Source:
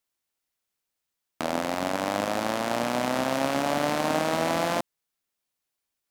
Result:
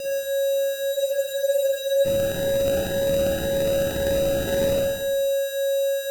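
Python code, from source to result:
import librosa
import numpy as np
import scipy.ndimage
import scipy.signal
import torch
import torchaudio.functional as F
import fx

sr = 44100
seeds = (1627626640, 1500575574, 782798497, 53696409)

y = scipy.signal.sosfilt(scipy.signal.cheby2(4, 60, [160.0, 430.0], 'bandstop', fs=sr, output='sos'), x)
y = fx.peak_eq(y, sr, hz=2800.0, db=-11.5, octaves=0.56)
y = y + 10.0 ** (-24.0 / 20.0) * np.sin(2.0 * np.pi * 550.0 * np.arange(len(y)) / sr)
y = fx.high_shelf(y, sr, hz=4300.0, db=10.5)
y = fx.fixed_phaser(y, sr, hz=2900.0, stages=6)
y = fx.sample_hold(y, sr, seeds[0], rate_hz=1100.0, jitter_pct=0)
y = fx.echo_feedback(y, sr, ms=113, feedback_pct=46, wet_db=-8)
y = fx.rev_schroeder(y, sr, rt60_s=0.71, comb_ms=38, drr_db=-0.5)
y = fx.spec_freeze(y, sr, seeds[1], at_s=0.96, hold_s=1.09)
y = fx.notch_cascade(y, sr, direction='rising', hz=1.9)
y = y * librosa.db_to_amplitude(2.5)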